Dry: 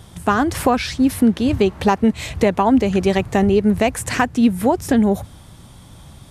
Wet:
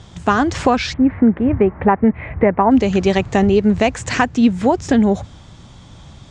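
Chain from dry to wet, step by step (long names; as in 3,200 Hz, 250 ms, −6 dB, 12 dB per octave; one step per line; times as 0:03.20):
elliptic low-pass filter 7,200 Hz, stop band 80 dB, from 0:00.92 2,100 Hz, from 0:02.70 7,200 Hz
level +2.5 dB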